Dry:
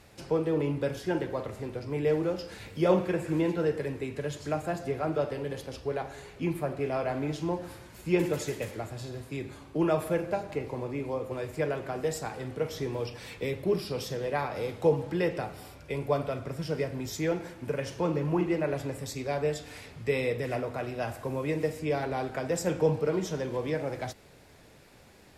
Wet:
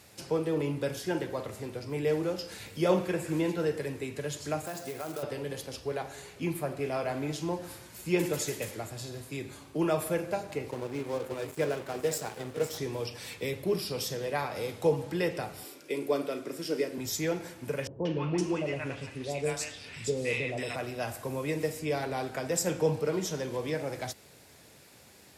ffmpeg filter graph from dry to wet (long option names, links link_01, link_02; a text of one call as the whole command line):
ffmpeg -i in.wav -filter_complex "[0:a]asettb=1/sr,asplit=3[link_01][link_02][link_03];[link_01]atrim=end=4.654[link_04];[link_02]atrim=start=4.65:end=5.23,asetpts=PTS-STARTPTS,afade=type=in:duration=0.004:curve=qsin,afade=type=out:start_time=0.576:duration=0.004:curve=qsin,lowshelf=frequency=160:gain=-9.5,acompressor=threshold=-31dB:ratio=8:attack=3.2:release=140:knee=1:detection=peak,acrusher=bits=4:mode=log:mix=0:aa=0.000001[link_05];[link_03]atrim=start=5.226[link_06];[link_04][link_05]acrossfade=duration=0.004:curve1=hsin:curve2=qsin[link_07];[link_07][link_06]acrossfade=duration=0.004:curve1=qsin:curve2=hsin,asettb=1/sr,asplit=3[link_08][link_09][link_10];[link_08]atrim=end=10.714[link_11];[link_09]atrim=start=10.71:end=12.78,asetpts=PTS-STARTPTS,afade=type=in:duration=0.004:curve=qsin,afade=type=out:start_time=2.066:duration=0.004:curve=qsin,equalizer=frequency=420:width=1.2:gain=3.5,aecho=1:1:506:0.266,atrim=end_sample=91287,aeval=exprs='sgn(val(0))*max(abs(val(0))-0.00708,0)':channel_layout=same[link_12];[link_10]atrim=start=12.776[link_13];[link_11][link_12]acrossfade=duration=0.004:curve1=hsin:curve2=qsin[link_14];[link_14][link_13]acrossfade=duration=0.004:curve1=qsin:curve2=hsin,asettb=1/sr,asplit=3[link_15][link_16][link_17];[link_15]atrim=end=15.644[link_18];[link_16]atrim=start=15.64:end=16.98,asetpts=PTS-STARTPTS,afade=type=in:duration=0.004:curve=qsin,afade=type=out:start_time=1.336:duration=0.004:curve=qsin,highpass=frequency=320:width_type=q:width=2.7,equalizer=frequency=780:width_type=o:width=1.2:gain=-6,asplit=2[link_19][link_20];[link_20]adelay=35,volume=-13.5dB[link_21];[link_19][link_21]amix=inputs=2:normalize=0,atrim=end_sample=59094[link_22];[link_17]atrim=start=16.976[link_23];[link_18][link_22]acrossfade=duration=0.004:curve1=hsin:curve2=qsin[link_24];[link_24][link_23]acrossfade=duration=0.004:curve1=qsin:curve2=hsin,asettb=1/sr,asplit=3[link_25][link_26][link_27];[link_25]atrim=end=17.874[link_28];[link_26]atrim=start=17.87:end=20.76,asetpts=PTS-STARTPTS,afade=type=in:duration=0.004:curve=qsin,afade=type=out:start_time=2.886:duration=0.004:curve=qsin,lowpass=frequency=10000:width=0.5412,lowpass=frequency=10000:width=1.3066,equalizer=frequency=2800:width=3:gain=6.5,acrossover=split=790|3700[link_29][link_30][link_31];[link_30]adelay=180[link_32];[link_31]adelay=510[link_33];[link_29][link_32][link_33]amix=inputs=3:normalize=0,atrim=end_sample=127449[link_34];[link_27]atrim=start=20.756[link_35];[link_28][link_34]acrossfade=duration=0.004:curve1=hsin:curve2=qsin[link_36];[link_36][link_35]acrossfade=duration=0.004:curve1=qsin:curve2=hsin,highpass=75,highshelf=frequency=4100:gain=11,volume=-2dB" out.wav